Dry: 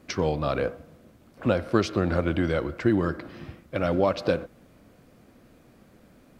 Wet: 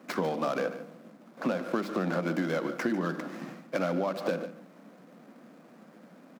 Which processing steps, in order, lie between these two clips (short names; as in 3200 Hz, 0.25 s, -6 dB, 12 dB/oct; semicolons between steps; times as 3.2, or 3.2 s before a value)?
median filter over 15 samples; steep high-pass 170 Hz 48 dB/oct; bell 400 Hz -5.5 dB 0.76 oct; notches 50/100/150/200/250/300/350 Hz; in parallel at 0 dB: limiter -21.5 dBFS, peak gain reduction 9 dB; on the sum: compressor 6:1, threshold -26 dBFS, peak gain reduction 9.5 dB; on a send: echo 0.146 s -14 dB